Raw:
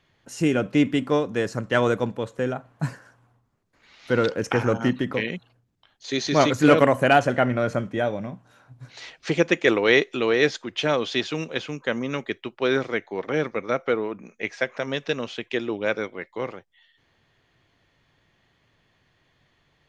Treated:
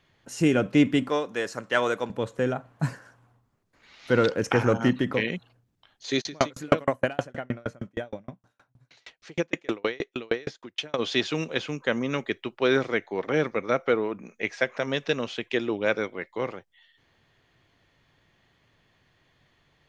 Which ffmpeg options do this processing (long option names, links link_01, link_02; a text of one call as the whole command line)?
ffmpeg -i in.wav -filter_complex "[0:a]asettb=1/sr,asplit=3[link_01][link_02][link_03];[link_01]atrim=end=1.094[link_04];[link_02]atrim=start=1.09:end=2.1,asetpts=PTS-STARTPTS,afade=type=in:duration=0.004:curve=qsin,afade=type=out:start_time=1.006:duration=0.004:curve=qsin,highpass=frequency=650:poles=1[link_05];[link_03]atrim=start=2.096[link_06];[link_04][link_05]acrossfade=duration=0.004:curve1=hsin:curve2=qsin[link_07];[link_07][link_06]acrossfade=duration=0.004:curve1=qsin:curve2=hsin,asplit=3[link_08][link_09][link_10];[link_08]afade=type=out:start_time=6.2:duration=0.02[link_11];[link_09]aeval=exprs='val(0)*pow(10,-38*if(lt(mod(6.4*n/s,1),2*abs(6.4)/1000),1-mod(6.4*n/s,1)/(2*abs(6.4)/1000),(mod(6.4*n/s,1)-2*abs(6.4)/1000)/(1-2*abs(6.4)/1000))/20)':channel_layout=same,afade=type=in:start_time=6.2:duration=0.02,afade=type=out:start_time=10.98:duration=0.02[link_12];[link_10]afade=type=in:start_time=10.98:duration=0.02[link_13];[link_11][link_12][link_13]amix=inputs=3:normalize=0" out.wav